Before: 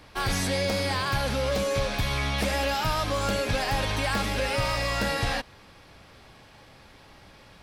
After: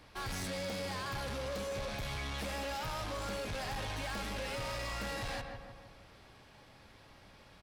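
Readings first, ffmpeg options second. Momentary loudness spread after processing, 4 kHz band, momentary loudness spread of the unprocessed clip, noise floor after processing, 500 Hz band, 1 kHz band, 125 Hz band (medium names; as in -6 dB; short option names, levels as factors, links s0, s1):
20 LU, -12.0 dB, 2 LU, -59 dBFS, -12.0 dB, -11.5 dB, -12.5 dB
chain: -filter_complex "[0:a]asplit=2[s0][s1];[s1]adelay=157,lowpass=f=1800:p=1,volume=0.355,asplit=2[s2][s3];[s3]adelay=157,lowpass=f=1800:p=1,volume=0.53,asplit=2[s4][s5];[s5]adelay=157,lowpass=f=1800:p=1,volume=0.53,asplit=2[s6][s7];[s7]adelay=157,lowpass=f=1800:p=1,volume=0.53,asplit=2[s8][s9];[s9]adelay=157,lowpass=f=1800:p=1,volume=0.53,asplit=2[s10][s11];[s11]adelay=157,lowpass=f=1800:p=1,volume=0.53[s12];[s0][s2][s4][s6][s8][s10][s12]amix=inputs=7:normalize=0,asoftclip=type=tanh:threshold=0.0376,volume=0.447"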